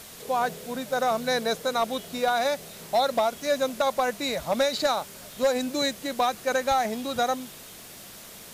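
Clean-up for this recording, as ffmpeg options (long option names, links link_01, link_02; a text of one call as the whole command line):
ffmpeg -i in.wav -af "adeclick=threshold=4,afftdn=noise_reduction=27:noise_floor=-45" out.wav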